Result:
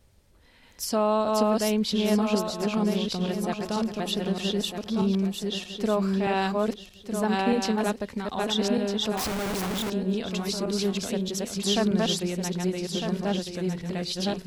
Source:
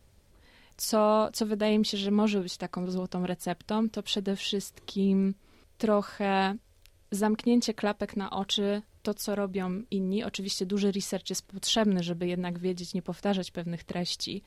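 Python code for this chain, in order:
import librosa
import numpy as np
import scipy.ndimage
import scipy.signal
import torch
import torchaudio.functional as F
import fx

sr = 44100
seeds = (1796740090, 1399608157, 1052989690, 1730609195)

y = fx.reverse_delay_fb(x, sr, ms=627, feedback_pct=47, wet_db=-1)
y = fx.schmitt(y, sr, flips_db=-43.0, at=(9.17, 9.9))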